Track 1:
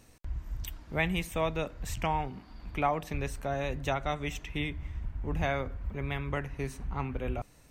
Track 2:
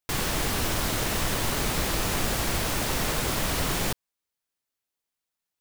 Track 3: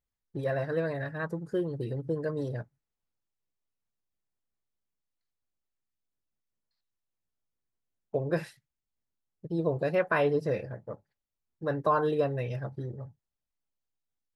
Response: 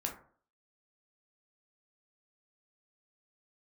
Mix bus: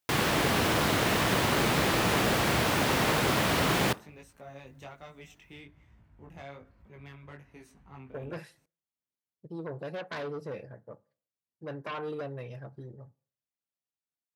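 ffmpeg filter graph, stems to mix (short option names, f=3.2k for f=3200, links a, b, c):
-filter_complex "[0:a]asoftclip=type=tanh:threshold=-24.5dB,flanger=delay=18:depth=4.6:speed=1.2,adelay=950,volume=-9.5dB[a];[1:a]volume=2.5dB,asplit=2[b][c];[c]volume=-16dB[d];[2:a]aeval=exprs='0.211*sin(PI/2*2.82*val(0)/0.211)':c=same,volume=-20dB,asplit=2[e][f];[f]volume=-18dB[g];[3:a]atrim=start_sample=2205[h];[d][g]amix=inputs=2:normalize=0[i];[i][h]afir=irnorm=-1:irlink=0[j];[a][b][e][j]amix=inputs=4:normalize=0,highpass=110,acrossover=split=3900[k][l];[l]acompressor=threshold=-36dB:ratio=4:attack=1:release=60[m];[k][m]amix=inputs=2:normalize=0"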